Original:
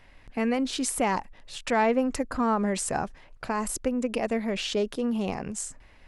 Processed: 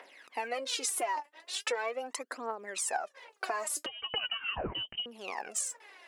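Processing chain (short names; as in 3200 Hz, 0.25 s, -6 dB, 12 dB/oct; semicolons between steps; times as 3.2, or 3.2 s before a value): phaser 0.4 Hz, delay 3.5 ms, feedback 76%; compressor 16:1, threshold -31 dBFS, peak gain reduction 21 dB; HPF 400 Hz 24 dB/oct; 3.86–5.06 inverted band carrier 3400 Hz; gain +2 dB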